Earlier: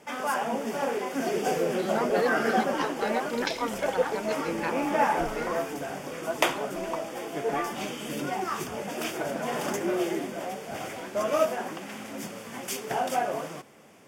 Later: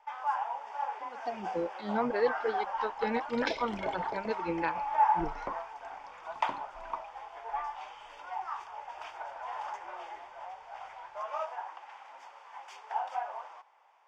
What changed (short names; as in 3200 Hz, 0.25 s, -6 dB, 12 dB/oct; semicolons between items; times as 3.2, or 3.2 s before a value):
first sound: add ladder high-pass 830 Hz, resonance 75%; master: add air absorption 160 m